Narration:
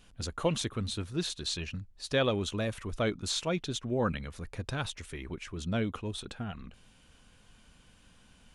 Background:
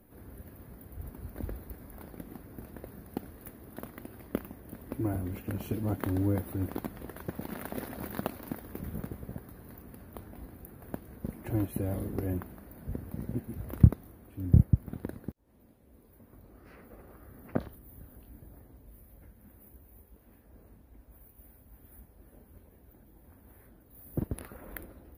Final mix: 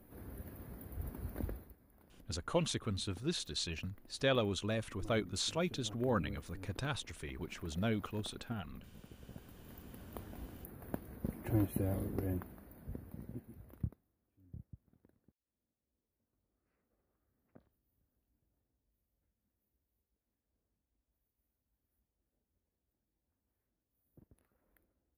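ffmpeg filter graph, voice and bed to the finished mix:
-filter_complex "[0:a]adelay=2100,volume=0.631[s0];[1:a]volume=6.31,afade=t=out:st=1.36:d=0.39:silence=0.125893,afade=t=in:st=9.02:d=1.13:silence=0.149624,afade=t=out:st=11.63:d=2.41:silence=0.0375837[s1];[s0][s1]amix=inputs=2:normalize=0"

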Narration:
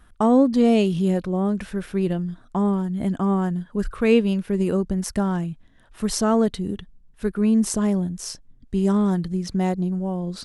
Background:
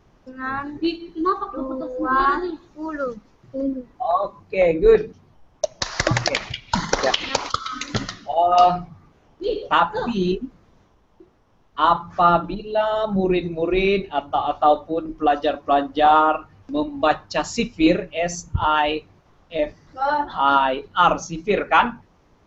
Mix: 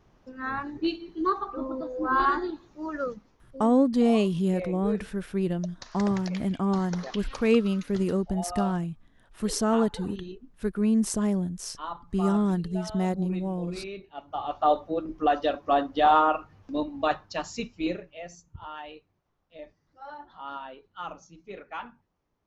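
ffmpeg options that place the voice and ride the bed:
-filter_complex "[0:a]adelay=3400,volume=0.596[s0];[1:a]volume=2.99,afade=t=out:st=3.07:d=0.62:silence=0.188365,afade=t=in:st=14.13:d=0.67:silence=0.188365,afade=t=out:st=16.53:d=1.89:silence=0.149624[s1];[s0][s1]amix=inputs=2:normalize=0"

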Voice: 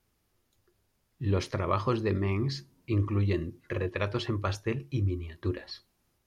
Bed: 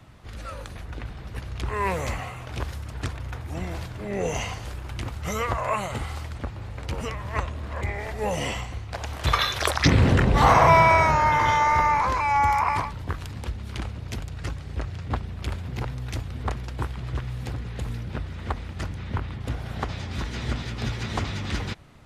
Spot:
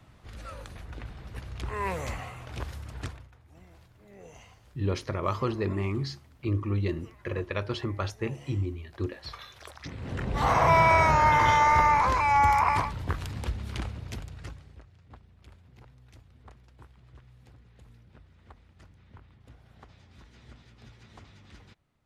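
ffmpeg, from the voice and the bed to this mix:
-filter_complex "[0:a]adelay=3550,volume=0.891[s0];[1:a]volume=6.68,afade=t=out:st=3.02:d=0.27:silence=0.141254,afade=t=in:st=10:d=1.26:silence=0.0794328,afade=t=out:st=13.56:d=1.27:silence=0.0749894[s1];[s0][s1]amix=inputs=2:normalize=0"

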